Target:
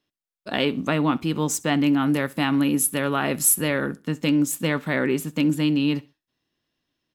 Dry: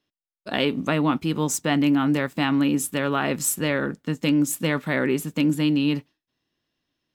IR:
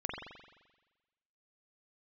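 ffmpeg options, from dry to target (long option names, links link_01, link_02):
-filter_complex "[0:a]asettb=1/sr,asplit=3[link_01][link_02][link_03];[link_01]atrim=end=2.024[link_04];[link_02]atrim=start=2.02:end=4.08,asetpts=PTS-STARTPTS,afade=type=in:duration=0.004:curve=qsin,afade=type=out:start_time=2.056:duration=0.004:curve=qsin,equalizer=frequency=11000:width_type=o:width=0.25:gain=14.5[link_05];[link_03]atrim=start=4.076[link_06];[link_04][link_05]acrossfade=duration=0.004:curve1=hsin:curve2=qsin[link_07];[link_07][link_06]acrossfade=duration=0.004:curve1=qsin:curve2=hsin,asplit=2[link_08][link_09];[link_09]aecho=0:1:65|130:0.075|0.0217[link_10];[link_08][link_10]amix=inputs=2:normalize=0"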